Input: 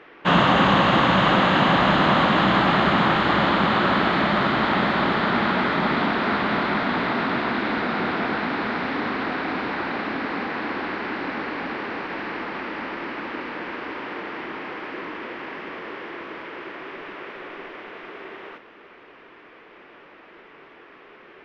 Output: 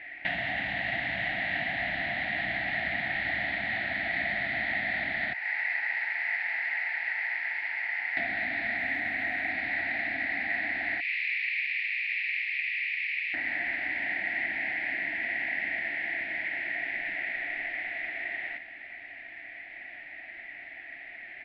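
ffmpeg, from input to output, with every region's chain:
ffmpeg -i in.wav -filter_complex "[0:a]asettb=1/sr,asplit=3[link_01][link_02][link_03];[link_01]atrim=end=5.334[link_04];[link_02]atrim=start=5.33:end=8.17,asetpts=PTS-STARTPTS,afade=type=in:duration=0.004:curve=qsin,afade=type=out:start_time=2.836:duration=0.004:curve=qsin,equalizer=frequency=2900:width_type=o:width=2:gain=-13.5,aeval=exprs='val(0)*sin(2*PI*650*n/s)':channel_layout=same,highpass=1100[link_05];[link_03]atrim=start=8.166[link_06];[link_04][link_05]acrossfade=duration=0.004:curve1=hsin:curve2=qsin[link_07];[link_07][link_06]acrossfade=duration=0.004:curve1=qsin:curve2=hsin,asettb=1/sr,asplit=3[link_08][link_09][link_10];[link_08]atrim=end=8.774[link_11];[link_09]atrim=start=8.77:end=9.5,asetpts=PTS-STARTPTS,afade=type=in:duration=0.004:curve=qsin,afade=type=out:start_time=0.726:duration=0.004:curve=qsin,lowpass=4200,acrusher=bits=6:mode=log:mix=0:aa=0.000001[link_12];[link_10]atrim=start=9.496[link_13];[link_11][link_12]acrossfade=duration=0.004:curve1=hsin:curve2=qsin[link_14];[link_14][link_13]acrossfade=duration=0.004:curve1=qsin:curve2=hsin,asettb=1/sr,asplit=3[link_15][link_16][link_17];[link_15]atrim=end=11.004[link_18];[link_16]atrim=start=11:end=13.34,asetpts=PTS-STARTPTS,afade=type=in:duration=0.004:curve=qsin,afade=type=out:start_time=2.336:duration=0.004:curve=qsin,highpass=frequency=2500:width_type=q:width=6,aderivative[link_19];[link_17]atrim=start=13.336[link_20];[link_18][link_19]acrossfade=duration=0.004:curve1=hsin:curve2=qsin[link_21];[link_21][link_20]acrossfade=duration=0.004:curve1=qsin:curve2=hsin,asettb=1/sr,asplit=3[link_22][link_23][link_24];[link_22]atrim=end=13.924[link_25];[link_23]atrim=start=13.92:end=17.33,asetpts=PTS-STARTPTS,afade=type=in:duration=0.004:curve=qsin,afade=type=out:start_time=3.406:duration=0.004:curve=qsin,asuperstop=centerf=1200:order=12:qfactor=5.2,equalizer=frequency=190:width=4.4:gain=6[link_26];[link_24]atrim=start=17.326[link_27];[link_25][link_26]acrossfade=duration=0.004:curve1=hsin:curve2=qsin[link_28];[link_28][link_27]acrossfade=duration=0.004:curve1=qsin:curve2=hsin,acompressor=threshold=-31dB:ratio=4,firequalizer=gain_entry='entry(100,0);entry(170,-12);entry(290,-7);entry(450,-27);entry(690,4);entry(1100,-28);entry(1900,14);entry(3000,-3);entry(4300,-1);entry(6700,-16)':delay=0.05:min_phase=1" out.wav

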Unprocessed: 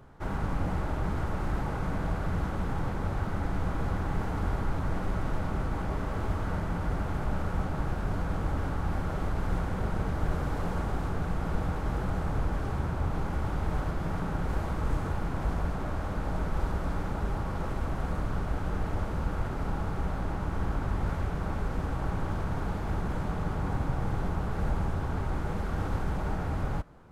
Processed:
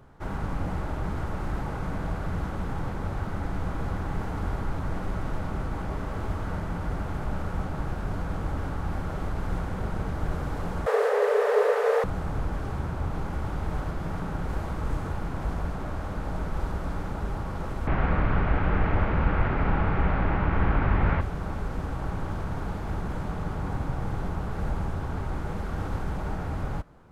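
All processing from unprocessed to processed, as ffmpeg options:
ffmpeg -i in.wav -filter_complex "[0:a]asettb=1/sr,asplit=3[link_01][link_02][link_03];[link_01]atrim=end=10.864[link_04];[link_02]atrim=start=10.86:end=12.04,asetpts=PTS-STARTPTS,afade=type=in:duration=0.004:curve=qsin,afade=type=out:start_time=1.176:duration=0.004:curve=qsin,acontrast=66,afreqshift=410[link_05];[link_03]atrim=start=12.036[link_06];[link_04][link_05]acrossfade=duration=0.004:curve1=hsin:curve2=qsin[link_07];[link_07][link_06]acrossfade=duration=0.004:curve1=qsin:curve2=hsin,asettb=1/sr,asplit=3[link_08][link_09][link_10];[link_08]atrim=end=17.874[link_11];[link_09]atrim=start=17.87:end=21.21,asetpts=PTS-STARTPTS,afade=type=in:duration=0.004:curve=qsin,afade=type=out:start_time=3.336:duration=0.004:curve=qsin,lowpass=frequency=2300:width_type=q:width=2.1,acontrast=80[link_12];[link_10]atrim=start=21.206[link_13];[link_11][link_12]acrossfade=duration=0.004:curve1=hsin:curve2=qsin[link_14];[link_14][link_13]acrossfade=duration=0.004:curve1=qsin:curve2=hsin" out.wav

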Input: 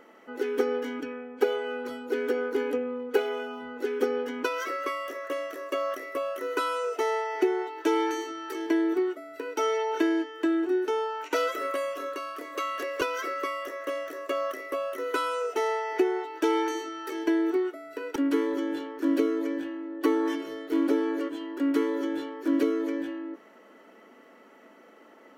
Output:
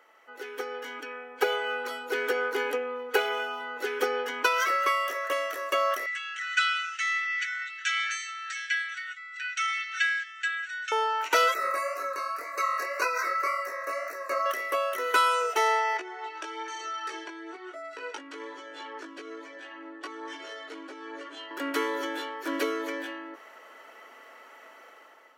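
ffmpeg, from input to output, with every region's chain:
ffmpeg -i in.wav -filter_complex "[0:a]asettb=1/sr,asplit=3[link_01][link_02][link_03];[link_01]atrim=end=6.064[link_04];[link_02]atrim=start=6.06:end=10.92,asetpts=PTS-STARTPTS,afade=type=in:duration=0.004:curve=qsin,afade=type=out:start_time=4.856:duration=0.004:curve=qsin,asuperpass=centerf=3600:order=20:qfactor=0.53,equalizer=frequency=4900:width_type=o:width=0.21:gain=-7.5,aecho=1:1:6:0.74,atrim=end_sample=214326[link_05];[link_03]atrim=start=10.916[link_06];[link_04][link_05]acrossfade=duration=0.004:curve1=hsin:curve2=qsin[link_07];[link_07][link_06]acrossfade=duration=0.004:curve1=qsin:curve2=hsin,asettb=1/sr,asplit=3[link_08][link_09][link_10];[link_08]atrim=end=11.544[link_11];[link_09]atrim=start=11.54:end=14.46,asetpts=PTS-STARTPTS,afade=type=in:duration=0.004:curve=qsin,afade=type=out:start_time=2.916:duration=0.004:curve=qsin,asuperstop=centerf=3200:order=8:qfactor=2.4,bass=frequency=250:gain=-5,treble=frequency=4000:gain=-1,flanger=delay=17.5:depth=6.9:speed=1.9[link_12];[link_10]atrim=start=14.456[link_13];[link_11][link_12]acrossfade=duration=0.004:curve1=hsin:curve2=qsin[link_14];[link_14][link_13]acrossfade=duration=0.004:curve1=qsin:curve2=hsin,asettb=1/sr,asplit=3[link_15][link_16][link_17];[link_15]atrim=end=15.974[link_18];[link_16]atrim=start=15.97:end=21.51,asetpts=PTS-STARTPTS,afade=type=in:duration=0.004:curve=qsin,afade=type=out:start_time=5.536:duration=0.004:curve=qsin,lowpass=frequency=8100:width=0.5412,lowpass=frequency=8100:width=1.3066,acompressor=threshold=-32dB:ratio=8:attack=3.2:release=140:knee=1:detection=peak,flanger=delay=16.5:depth=2.5:speed=1.1[link_19];[link_17]atrim=start=21.506[link_20];[link_18][link_19]acrossfade=duration=0.004:curve1=hsin:curve2=qsin[link_21];[link_21][link_20]acrossfade=duration=0.004:curve1=qsin:curve2=hsin,highpass=790,dynaudnorm=framelen=710:gausssize=3:maxgain=10dB,volume=-2dB" out.wav

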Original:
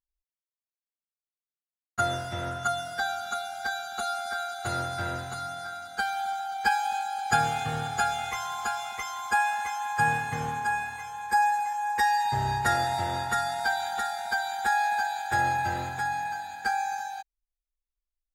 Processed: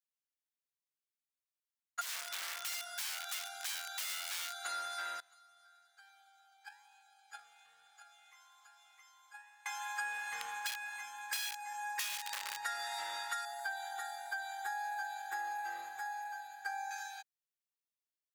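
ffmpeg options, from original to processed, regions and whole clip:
ffmpeg -i in.wav -filter_complex "[0:a]asettb=1/sr,asplit=3[link_01][link_02][link_03];[link_01]atrim=end=2.014[link_04];[link_02]atrim=start=2.01:end=4.65,asetpts=PTS-STARTPTS,afade=type=in:duration=0.004:curve=qsin,afade=type=out:start_time=2.636:duration=0.004:curve=qsin,lowshelf=frequency=72:gain=-3.5,aeval=exprs='(mod(26.6*val(0)+1,2)-1)/26.6':channel_layout=same[link_05];[link_03]atrim=start=4.646[link_06];[link_04][link_05]acrossfade=duration=0.004:curve1=hsin:curve2=qsin[link_07];[link_07][link_06]acrossfade=duration=0.004:curve1=qsin:curve2=hsin,asettb=1/sr,asplit=3[link_08][link_09][link_10];[link_08]atrim=end=5.204[link_11];[link_09]atrim=start=5.2:end=9.66,asetpts=PTS-STARTPTS,afade=type=in:duration=0.004:curve=qsin,afade=type=out:start_time=4.456:duration=0.004:curve=qsin,acompressor=threshold=-33dB:ratio=2:attack=3.2:release=140:knee=1:detection=peak,agate=range=-16dB:threshold=-29dB:ratio=16:release=100:detection=peak,flanger=delay=4.5:depth=8.6:regen=84:speed=1.1:shape=triangular[link_12];[link_10]atrim=start=9.656[link_13];[link_11][link_12]acrossfade=duration=0.004:curve1=hsin:curve2=qsin[link_14];[link_14][link_13]acrossfade=duration=0.004:curve1=qsin:curve2=hsin,asettb=1/sr,asplit=3[link_15][link_16][link_17];[link_15]atrim=end=10.394[link_18];[link_16]atrim=start=10.39:end=12.63,asetpts=PTS-STARTPTS,afade=type=in:duration=0.004:curve=qsin,afade=type=out:start_time=2.236:duration=0.004:curve=qsin,aeval=exprs='val(0)+0.00794*(sin(2*PI*60*n/s)+sin(2*PI*2*60*n/s)/2+sin(2*PI*3*60*n/s)/3+sin(2*PI*4*60*n/s)/4+sin(2*PI*5*60*n/s)/5)':channel_layout=same,aeval=exprs='(mod(10.6*val(0)+1,2)-1)/10.6':channel_layout=same[link_19];[link_17]atrim=start=12.626[link_20];[link_18][link_19]acrossfade=duration=0.004:curve1=hsin:curve2=qsin[link_21];[link_21][link_20]acrossfade=duration=0.004:curve1=qsin:curve2=hsin,asettb=1/sr,asplit=3[link_22][link_23][link_24];[link_22]atrim=end=13.454[link_25];[link_23]atrim=start=13.45:end=16.91,asetpts=PTS-STARTPTS,afade=type=in:duration=0.004:curve=qsin,afade=type=out:start_time=3.456:duration=0.004:curve=qsin,equalizer=frequency=3900:width_type=o:width=2.8:gain=-13,aecho=1:1:2.6:0.81,atrim=end_sample=152586,aeval=exprs='val(0)+0.00316*(sin(2*PI*60*n/s)+sin(2*PI*2*60*n/s)/2+sin(2*PI*3*60*n/s)/3+sin(2*PI*4*60*n/s)/4+sin(2*PI*5*60*n/s)/5)':channel_layout=same[link_26];[link_24]atrim=start=16.906[link_27];[link_25][link_26]acrossfade=duration=0.004:curve1=hsin:curve2=qsin[link_28];[link_28][link_27]acrossfade=duration=0.004:curve1=qsin:curve2=hsin,highpass=1400,acompressor=threshold=-33dB:ratio=6,volume=-2.5dB" out.wav

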